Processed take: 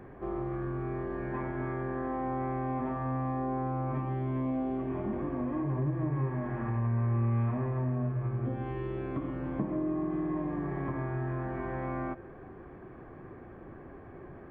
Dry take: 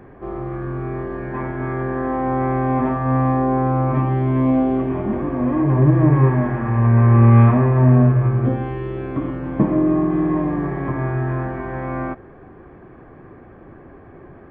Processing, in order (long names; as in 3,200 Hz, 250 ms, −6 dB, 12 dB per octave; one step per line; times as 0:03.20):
downward compressor 3 to 1, threshold −27 dBFS, peak gain reduction 14.5 dB
on a send: convolution reverb RT60 1.4 s, pre-delay 3 ms, DRR 16 dB
on the sum: level −5.5 dB